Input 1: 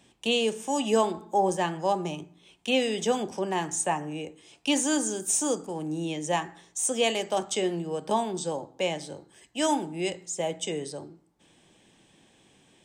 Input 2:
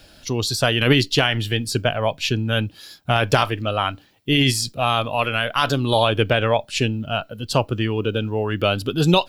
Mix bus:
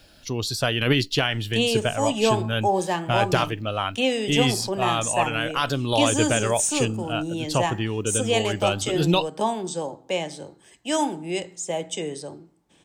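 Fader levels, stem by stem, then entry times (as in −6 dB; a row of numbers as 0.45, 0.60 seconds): +2.0, −4.5 decibels; 1.30, 0.00 seconds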